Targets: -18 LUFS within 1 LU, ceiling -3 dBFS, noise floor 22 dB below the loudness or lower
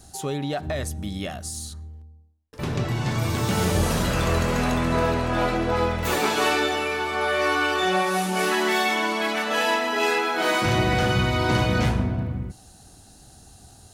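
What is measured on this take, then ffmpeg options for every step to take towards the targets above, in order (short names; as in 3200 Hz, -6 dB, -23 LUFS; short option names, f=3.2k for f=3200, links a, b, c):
loudness -23.5 LUFS; peak -9.5 dBFS; loudness target -18.0 LUFS
-> -af "volume=5.5dB"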